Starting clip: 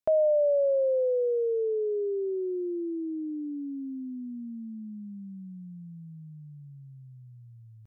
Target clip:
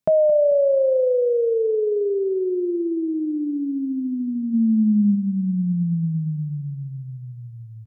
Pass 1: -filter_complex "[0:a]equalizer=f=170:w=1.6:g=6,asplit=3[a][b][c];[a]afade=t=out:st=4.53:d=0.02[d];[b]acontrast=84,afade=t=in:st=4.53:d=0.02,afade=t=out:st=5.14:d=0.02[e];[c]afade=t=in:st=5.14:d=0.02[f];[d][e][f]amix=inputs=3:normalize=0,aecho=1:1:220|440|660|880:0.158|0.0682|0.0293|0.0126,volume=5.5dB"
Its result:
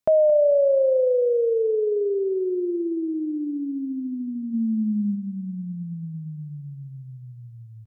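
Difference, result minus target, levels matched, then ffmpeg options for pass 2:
125 Hz band -6.5 dB
-filter_complex "[0:a]equalizer=f=170:w=1.6:g=16.5,asplit=3[a][b][c];[a]afade=t=out:st=4.53:d=0.02[d];[b]acontrast=84,afade=t=in:st=4.53:d=0.02,afade=t=out:st=5.14:d=0.02[e];[c]afade=t=in:st=5.14:d=0.02[f];[d][e][f]amix=inputs=3:normalize=0,aecho=1:1:220|440|660|880:0.158|0.0682|0.0293|0.0126,volume=5.5dB"

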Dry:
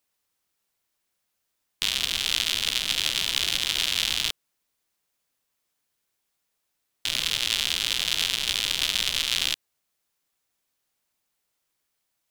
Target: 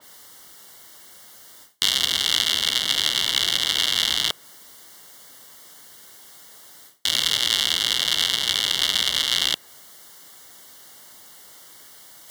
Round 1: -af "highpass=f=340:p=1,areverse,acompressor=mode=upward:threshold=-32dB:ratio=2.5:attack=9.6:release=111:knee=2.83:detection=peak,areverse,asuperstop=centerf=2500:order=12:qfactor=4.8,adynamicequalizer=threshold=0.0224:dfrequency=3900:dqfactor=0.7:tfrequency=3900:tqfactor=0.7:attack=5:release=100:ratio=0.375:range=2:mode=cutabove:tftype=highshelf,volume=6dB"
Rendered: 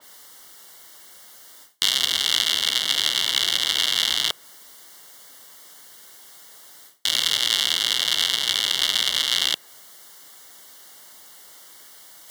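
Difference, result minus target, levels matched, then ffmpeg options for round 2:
125 Hz band -5.5 dB
-af "highpass=f=140:p=1,areverse,acompressor=mode=upward:threshold=-32dB:ratio=2.5:attack=9.6:release=111:knee=2.83:detection=peak,areverse,asuperstop=centerf=2500:order=12:qfactor=4.8,adynamicequalizer=threshold=0.0224:dfrequency=3900:dqfactor=0.7:tfrequency=3900:tqfactor=0.7:attack=5:release=100:ratio=0.375:range=2:mode=cutabove:tftype=highshelf,volume=6dB"

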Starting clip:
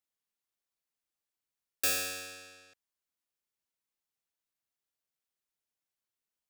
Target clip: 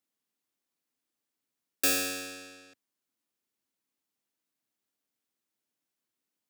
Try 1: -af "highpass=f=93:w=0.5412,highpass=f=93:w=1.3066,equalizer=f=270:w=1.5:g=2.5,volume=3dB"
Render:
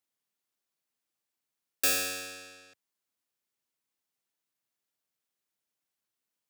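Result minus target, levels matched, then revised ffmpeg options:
250 Hz band -7.5 dB
-af "highpass=f=93:w=0.5412,highpass=f=93:w=1.3066,equalizer=f=270:w=1.5:g=10.5,volume=3dB"

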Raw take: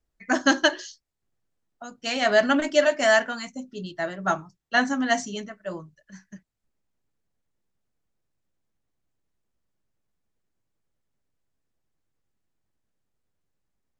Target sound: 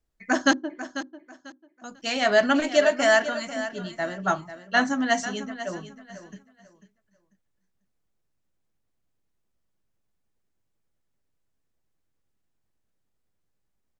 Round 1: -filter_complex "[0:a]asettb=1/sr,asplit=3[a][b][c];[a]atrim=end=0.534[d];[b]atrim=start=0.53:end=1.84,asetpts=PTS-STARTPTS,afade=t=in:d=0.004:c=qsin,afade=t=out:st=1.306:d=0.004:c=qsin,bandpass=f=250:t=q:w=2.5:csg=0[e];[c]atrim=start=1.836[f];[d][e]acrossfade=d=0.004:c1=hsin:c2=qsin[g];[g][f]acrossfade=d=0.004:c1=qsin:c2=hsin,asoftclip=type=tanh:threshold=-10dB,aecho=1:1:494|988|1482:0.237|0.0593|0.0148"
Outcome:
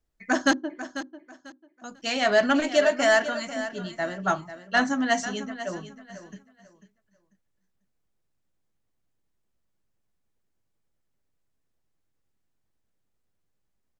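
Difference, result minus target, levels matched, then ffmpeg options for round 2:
soft clip: distortion +15 dB
-filter_complex "[0:a]asettb=1/sr,asplit=3[a][b][c];[a]atrim=end=0.534[d];[b]atrim=start=0.53:end=1.84,asetpts=PTS-STARTPTS,afade=t=in:d=0.004:c=qsin,afade=t=out:st=1.306:d=0.004:c=qsin,bandpass=f=250:t=q:w=2.5:csg=0[e];[c]atrim=start=1.836[f];[d][e]acrossfade=d=0.004:c1=hsin:c2=qsin[g];[g][f]acrossfade=d=0.004:c1=qsin:c2=hsin,asoftclip=type=tanh:threshold=-1.5dB,aecho=1:1:494|988|1482:0.237|0.0593|0.0148"

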